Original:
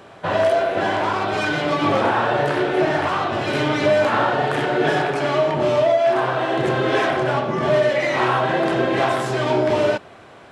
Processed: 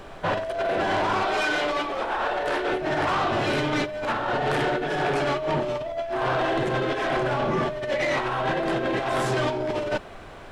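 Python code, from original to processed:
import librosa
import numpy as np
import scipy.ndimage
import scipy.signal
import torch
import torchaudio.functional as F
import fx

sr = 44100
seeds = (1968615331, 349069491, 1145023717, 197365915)

y = fx.over_compress(x, sr, threshold_db=-21.0, ratio=-0.5)
y = fx.highpass(y, sr, hz=380.0, slope=12, at=(1.23, 2.72))
y = 10.0 ** (-16.5 / 20.0) * np.tanh(y / 10.0 ** (-16.5 / 20.0))
y = fx.dmg_noise_colour(y, sr, seeds[0], colour='brown', level_db=-45.0)
y = F.gain(torch.from_numpy(y), -1.5).numpy()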